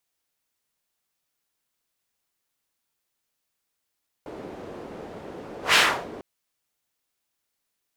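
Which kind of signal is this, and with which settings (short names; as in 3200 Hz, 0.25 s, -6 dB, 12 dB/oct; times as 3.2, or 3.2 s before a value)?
whoosh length 1.95 s, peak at 1.49, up 0.14 s, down 0.37 s, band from 420 Hz, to 2400 Hz, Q 1.2, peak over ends 23 dB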